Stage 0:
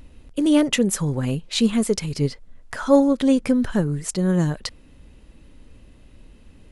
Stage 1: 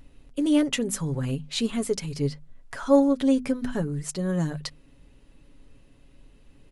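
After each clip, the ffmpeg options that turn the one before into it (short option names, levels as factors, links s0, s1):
-af "bandreject=f=50:t=h:w=6,bandreject=f=100:t=h:w=6,bandreject=f=150:t=h:w=6,bandreject=f=200:t=h:w=6,bandreject=f=250:t=h:w=6,aecho=1:1:7.2:0.42,volume=0.501"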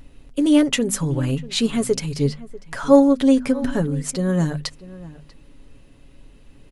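-filter_complex "[0:a]asplit=2[s0][s1];[s1]adelay=641.4,volume=0.126,highshelf=f=4000:g=-14.4[s2];[s0][s2]amix=inputs=2:normalize=0,volume=2"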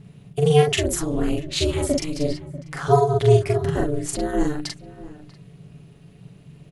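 -filter_complex "[0:a]aeval=exprs='val(0)*sin(2*PI*150*n/s)':c=same,asplit=2[s0][s1];[s1]adelay=43,volume=0.794[s2];[s0][s2]amix=inputs=2:normalize=0"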